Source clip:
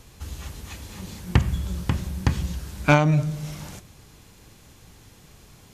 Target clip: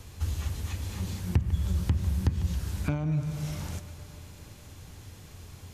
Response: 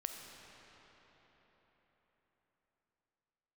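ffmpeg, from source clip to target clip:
-filter_complex "[0:a]acompressor=threshold=0.0398:ratio=3,asplit=2[s0][s1];[1:a]atrim=start_sample=2205,adelay=149[s2];[s1][s2]afir=irnorm=-1:irlink=0,volume=0.178[s3];[s0][s3]amix=inputs=2:normalize=0,acrossover=split=430[s4][s5];[s5]acompressor=threshold=0.00891:ratio=4[s6];[s4][s6]amix=inputs=2:normalize=0,equalizer=f=87:t=o:w=0.38:g=13.5"

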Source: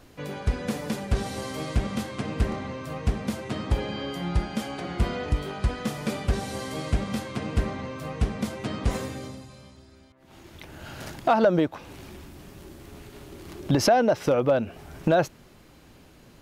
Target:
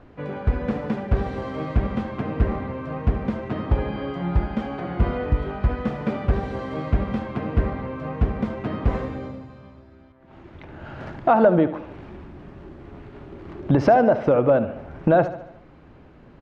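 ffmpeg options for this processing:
-af "lowpass=1700,aecho=1:1:73|146|219|292|365|438:0.224|0.121|0.0653|0.0353|0.019|0.0103,volume=1.58"

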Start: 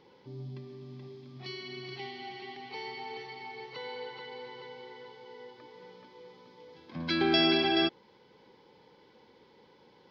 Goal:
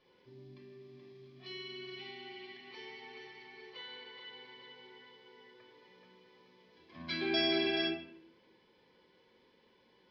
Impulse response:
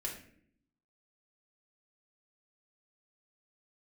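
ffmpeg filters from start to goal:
-filter_complex "[0:a]equalizer=f=2500:w=1:g=6.5[s0];[1:a]atrim=start_sample=2205[s1];[s0][s1]afir=irnorm=-1:irlink=0,volume=0.355"

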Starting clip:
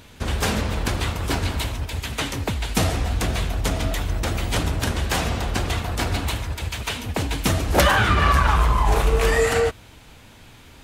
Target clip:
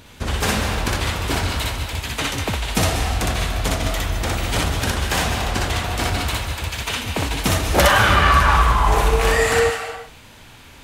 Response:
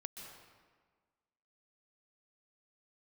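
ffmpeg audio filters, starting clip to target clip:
-filter_complex "[0:a]asplit=2[s0][s1];[s1]highpass=660[s2];[1:a]atrim=start_sample=2205,afade=t=out:st=0.39:d=0.01,atrim=end_sample=17640,adelay=61[s3];[s2][s3]afir=irnorm=-1:irlink=0,volume=1.68[s4];[s0][s4]amix=inputs=2:normalize=0,volume=1.12"

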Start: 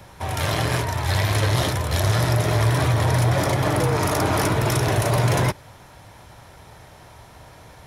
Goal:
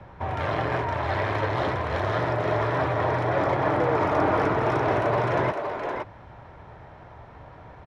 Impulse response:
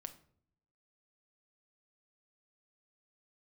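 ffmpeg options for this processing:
-filter_complex "[0:a]lowpass=1700,acrossover=split=270[s0][s1];[s0]acompressor=threshold=0.0282:ratio=6[s2];[s1]aecho=1:1:516:0.562[s3];[s2][s3]amix=inputs=2:normalize=0"

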